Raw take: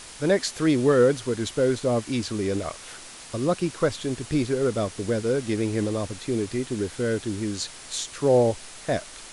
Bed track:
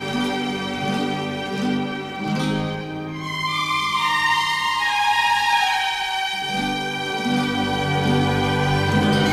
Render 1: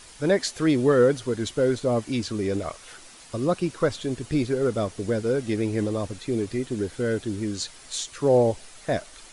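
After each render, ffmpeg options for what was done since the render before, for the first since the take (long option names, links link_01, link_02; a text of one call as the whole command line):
ffmpeg -i in.wav -af "afftdn=noise_reduction=7:noise_floor=-43" out.wav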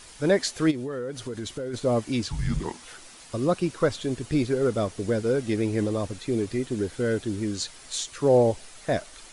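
ffmpeg -i in.wav -filter_complex "[0:a]asplit=3[link_01][link_02][link_03];[link_01]afade=type=out:start_time=0.7:duration=0.02[link_04];[link_02]acompressor=threshold=-29dB:ratio=10:attack=3.2:release=140:knee=1:detection=peak,afade=type=in:start_time=0.7:duration=0.02,afade=type=out:start_time=1.73:duration=0.02[link_05];[link_03]afade=type=in:start_time=1.73:duration=0.02[link_06];[link_04][link_05][link_06]amix=inputs=3:normalize=0,asettb=1/sr,asplit=3[link_07][link_08][link_09];[link_07]atrim=end=2.294[link_10];[link_08]atrim=start=2.29:end=2.85,asetpts=PTS-STARTPTS,afade=type=in:duration=0.004:curve=qsin,afade=type=out:start_time=0.556:duration=0.004:curve=qsin,afreqshift=-260[link_11];[link_09]atrim=start=2.846[link_12];[link_10][link_11]acrossfade=duration=0.004:curve1=hsin:curve2=qsin[link_13];[link_13][link_12]acrossfade=duration=0.004:curve1=qsin:curve2=hsin" out.wav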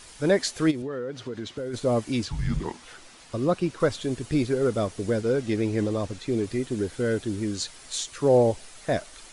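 ffmpeg -i in.wav -filter_complex "[0:a]asettb=1/sr,asplit=3[link_01][link_02][link_03];[link_01]atrim=end=0.824[link_04];[link_02]atrim=start=0.82:end=1.58,asetpts=PTS-STARTPTS,afade=type=in:duration=0.004:curve=qsin,afade=type=out:start_time=0.756:duration=0.004:curve=qsin,highpass=110,lowpass=4600[link_05];[link_03]atrim=start=1.576[link_06];[link_04][link_05]acrossfade=duration=0.004:curve1=hsin:curve2=qsin[link_07];[link_07][link_06]acrossfade=duration=0.004:curve1=qsin:curve2=hsin,asettb=1/sr,asplit=3[link_08][link_09][link_10];[link_08]atrim=end=2.254[link_11];[link_09]atrim=start=2.25:end=3.8,asetpts=PTS-STARTPTS,afade=type=in:duration=0.004:curve=qsin,afade=type=out:start_time=1.546:duration=0.004:curve=qsin,highshelf=frequency=7900:gain=-10[link_12];[link_10]atrim=start=3.796[link_13];[link_11][link_12]acrossfade=duration=0.004:curve1=hsin:curve2=qsin[link_14];[link_14][link_13]acrossfade=duration=0.004:curve1=qsin:curve2=hsin,asettb=1/sr,asplit=3[link_15][link_16][link_17];[link_15]atrim=end=5.214[link_18];[link_16]atrim=start=5.21:end=6.44,asetpts=PTS-STARTPTS,afade=type=in:duration=0.004:curve=qsin,afade=type=out:start_time=1.226:duration=0.004:curve=qsin,lowpass=8400[link_19];[link_17]atrim=start=6.436[link_20];[link_18][link_19]acrossfade=duration=0.004:curve1=hsin:curve2=qsin[link_21];[link_21][link_20]acrossfade=duration=0.004:curve1=qsin:curve2=hsin" out.wav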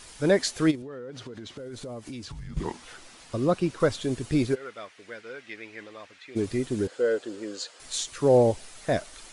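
ffmpeg -i in.wav -filter_complex "[0:a]asettb=1/sr,asplit=3[link_01][link_02][link_03];[link_01]atrim=end=0.754[link_04];[link_02]atrim=start=0.75:end=2.57,asetpts=PTS-STARTPTS,afade=type=in:duration=0.004:curve=qsin,afade=type=out:start_time=1.816:duration=0.004:curve=qsin,acompressor=threshold=-36dB:ratio=6:attack=3.2:release=140:knee=1:detection=peak[link_05];[link_03]atrim=start=2.566[link_06];[link_04][link_05]acrossfade=duration=0.004:curve1=hsin:curve2=qsin[link_07];[link_07][link_06]acrossfade=duration=0.004:curve1=qsin:curve2=hsin,asplit=3[link_08][link_09][link_10];[link_08]afade=type=out:start_time=4.54:duration=0.02[link_11];[link_09]bandpass=frequency=2100:width_type=q:width=1.7,afade=type=in:start_time=4.54:duration=0.02,afade=type=out:start_time=6.35:duration=0.02[link_12];[link_10]afade=type=in:start_time=6.35:duration=0.02[link_13];[link_11][link_12][link_13]amix=inputs=3:normalize=0,asettb=1/sr,asplit=3[link_14][link_15][link_16];[link_14]atrim=end=6.874[link_17];[link_15]atrim=start=6.87:end=7.8,asetpts=PTS-STARTPTS,afade=type=in:duration=0.004:curve=qsin,afade=type=out:start_time=0.926:duration=0.004:curve=qsin,highpass=460,equalizer=frequency=500:width_type=q:width=4:gain=9,equalizer=frequency=890:width_type=q:width=4:gain=-3,equalizer=frequency=2200:width_type=q:width=4:gain=-6,equalizer=frequency=3700:width_type=q:width=4:gain=-5,equalizer=frequency=5800:width_type=q:width=4:gain=-8,lowpass=frequency=7200:width=0.5412,lowpass=frequency=7200:width=1.3066[link_18];[link_16]atrim=start=7.796[link_19];[link_17][link_18]acrossfade=duration=0.004:curve1=hsin:curve2=qsin[link_20];[link_20][link_19]acrossfade=duration=0.004:curve1=qsin:curve2=hsin" out.wav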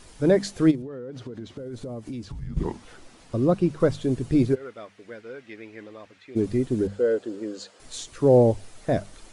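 ffmpeg -i in.wav -af "tiltshelf=frequency=720:gain=6,bandreject=frequency=50:width_type=h:width=6,bandreject=frequency=100:width_type=h:width=6,bandreject=frequency=150:width_type=h:width=6,bandreject=frequency=200:width_type=h:width=6" out.wav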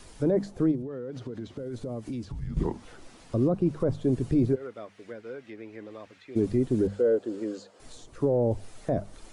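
ffmpeg -i in.wav -filter_complex "[0:a]acrossover=split=280|1100[link_01][link_02][link_03];[link_03]acompressor=threshold=-52dB:ratio=5[link_04];[link_01][link_02][link_04]amix=inputs=3:normalize=0,alimiter=limit=-16dB:level=0:latency=1:release=14" out.wav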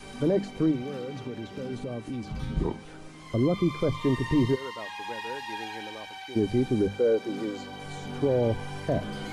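ffmpeg -i in.wav -i bed.wav -filter_complex "[1:a]volume=-18.5dB[link_01];[0:a][link_01]amix=inputs=2:normalize=0" out.wav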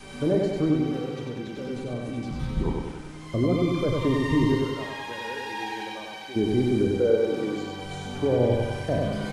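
ffmpeg -i in.wav -filter_complex "[0:a]asplit=2[link_01][link_02];[link_02]adelay=33,volume=-10.5dB[link_03];[link_01][link_03]amix=inputs=2:normalize=0,aecho=1:1:96|192|288|384|480|576|672|768:0.708|0.396|0.222|0.124|0.0696|0.039|0.0218|0.0122" out.wav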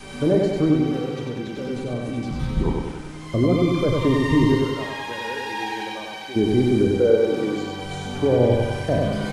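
ffmpeg -i in.wav -af "volume=4.5dB" out.wav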